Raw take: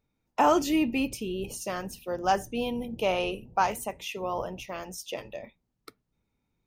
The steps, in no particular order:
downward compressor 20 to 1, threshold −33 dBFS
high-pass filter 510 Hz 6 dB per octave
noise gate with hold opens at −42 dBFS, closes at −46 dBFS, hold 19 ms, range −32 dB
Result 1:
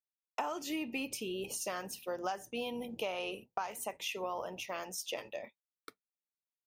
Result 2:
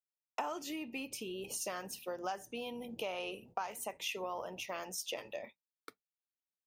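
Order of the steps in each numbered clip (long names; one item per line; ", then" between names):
high-pass filter, then noise gate with hold, then downward compressor
noise gate with hold, then downward compressor, then high-pass filter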